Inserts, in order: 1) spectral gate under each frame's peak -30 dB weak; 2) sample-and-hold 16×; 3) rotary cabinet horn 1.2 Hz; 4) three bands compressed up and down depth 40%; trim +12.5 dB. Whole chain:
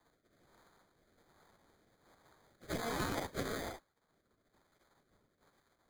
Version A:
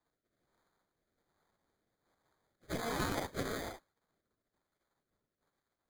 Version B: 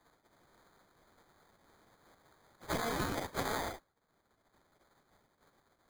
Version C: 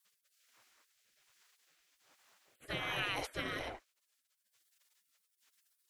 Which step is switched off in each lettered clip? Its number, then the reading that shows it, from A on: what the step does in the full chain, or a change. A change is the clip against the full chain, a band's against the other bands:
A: 4, crest factor change +3.5 dB; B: 3, 1 kHz band +2.0 dB; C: 2, crest factor change +2.0 dB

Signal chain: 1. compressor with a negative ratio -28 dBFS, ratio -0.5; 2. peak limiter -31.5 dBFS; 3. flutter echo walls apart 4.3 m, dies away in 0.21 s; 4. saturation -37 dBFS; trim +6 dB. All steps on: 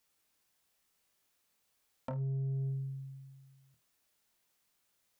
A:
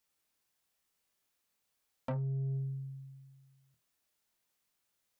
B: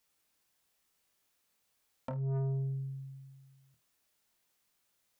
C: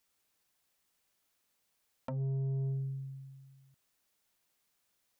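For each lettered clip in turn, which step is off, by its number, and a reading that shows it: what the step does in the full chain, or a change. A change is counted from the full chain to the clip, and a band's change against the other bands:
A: 1, 125 Hz band -2.5 dB; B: 2, mean gain reduction 1.5 dB; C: 3, 1 kHz band -2.5 dB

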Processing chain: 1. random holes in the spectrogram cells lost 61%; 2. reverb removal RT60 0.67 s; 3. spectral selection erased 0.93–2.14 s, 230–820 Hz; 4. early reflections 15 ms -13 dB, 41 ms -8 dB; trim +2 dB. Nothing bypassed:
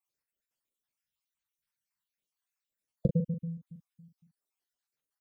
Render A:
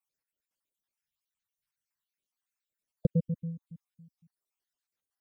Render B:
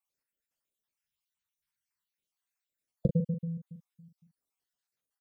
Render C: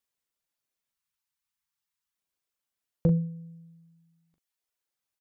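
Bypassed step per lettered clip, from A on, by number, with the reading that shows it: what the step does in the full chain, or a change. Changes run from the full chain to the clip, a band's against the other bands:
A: 4, echo-to-direct -7.0 dB to none; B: 2, momentary loudness spread change +6 LU; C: 1, crest factor change -3.0 dB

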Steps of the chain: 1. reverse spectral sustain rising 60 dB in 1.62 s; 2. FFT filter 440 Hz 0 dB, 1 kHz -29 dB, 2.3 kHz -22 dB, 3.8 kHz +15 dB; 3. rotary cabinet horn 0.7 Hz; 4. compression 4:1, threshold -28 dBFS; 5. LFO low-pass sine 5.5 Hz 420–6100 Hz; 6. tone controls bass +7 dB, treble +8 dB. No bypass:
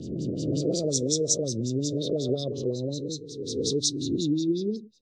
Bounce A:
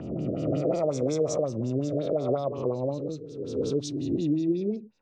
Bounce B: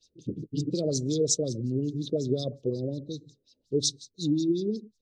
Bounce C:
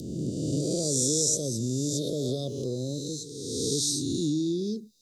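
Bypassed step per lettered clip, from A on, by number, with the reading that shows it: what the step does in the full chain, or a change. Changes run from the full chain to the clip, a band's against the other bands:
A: 2, 8 kHz band -14.0 dB; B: 1, momentary loudness spread change +3 LU; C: 5, 8 kHz band +3.5 dB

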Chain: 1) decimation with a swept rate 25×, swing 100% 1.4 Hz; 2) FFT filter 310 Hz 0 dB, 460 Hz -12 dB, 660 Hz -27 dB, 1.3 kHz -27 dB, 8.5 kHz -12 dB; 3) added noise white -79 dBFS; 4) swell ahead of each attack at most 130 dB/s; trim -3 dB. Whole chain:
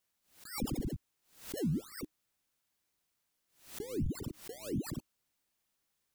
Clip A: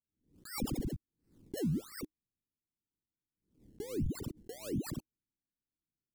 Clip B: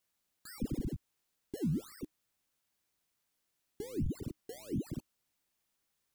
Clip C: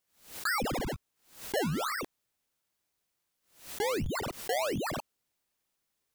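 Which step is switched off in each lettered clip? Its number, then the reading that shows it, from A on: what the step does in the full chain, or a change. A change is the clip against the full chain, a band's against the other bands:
3, momentary loudness spread change -1 LU; 4, 125 Hz band +7.0 dB; 2, 125 Hz band -10.5 dB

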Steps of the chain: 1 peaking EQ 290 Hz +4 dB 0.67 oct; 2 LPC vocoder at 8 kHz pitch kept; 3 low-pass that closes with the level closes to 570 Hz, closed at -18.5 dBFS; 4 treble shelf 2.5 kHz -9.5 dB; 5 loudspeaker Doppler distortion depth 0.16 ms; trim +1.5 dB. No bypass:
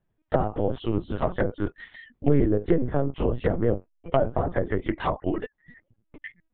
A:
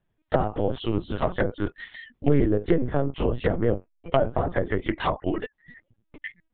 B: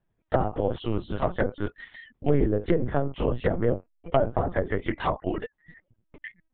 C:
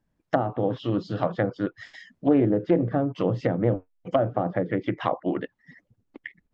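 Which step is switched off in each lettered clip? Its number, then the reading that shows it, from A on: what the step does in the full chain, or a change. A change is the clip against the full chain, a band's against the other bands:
4, 2 kHz band +3.0 dB; 1, 250 Hz band -2.5 dB; 2, 250 Hz band +2.0 dB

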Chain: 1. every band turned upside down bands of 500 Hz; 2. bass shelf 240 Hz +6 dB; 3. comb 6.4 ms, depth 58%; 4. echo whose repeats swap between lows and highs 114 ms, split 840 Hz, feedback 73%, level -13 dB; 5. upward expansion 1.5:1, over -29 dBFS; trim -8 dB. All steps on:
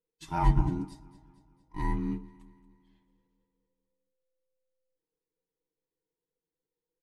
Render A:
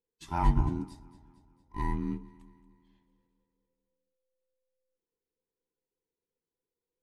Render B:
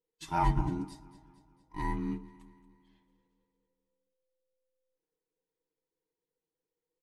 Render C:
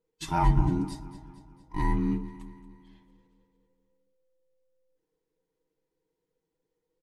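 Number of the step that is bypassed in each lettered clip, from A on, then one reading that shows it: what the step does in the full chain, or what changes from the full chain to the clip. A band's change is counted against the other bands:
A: 3, crest factor change -2.0 dB; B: 2, 125 Hz band -4.5 dB; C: 5, crest factor change -2.5 dB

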